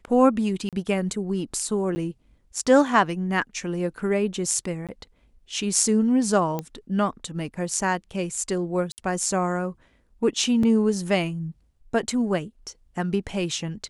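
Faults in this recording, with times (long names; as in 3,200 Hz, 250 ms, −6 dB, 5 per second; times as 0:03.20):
0:00.69–0:00.73: drop-out 37 ms
0:01.95–0:01.96: drop-out 10 ms
0:04.87–0:04.89: drop-out 17 ms
0:06.59: click −15 dBFS
0:08.92–0:08.98: drop-out 59 ms
0:10.63: drop-out 3.7 ms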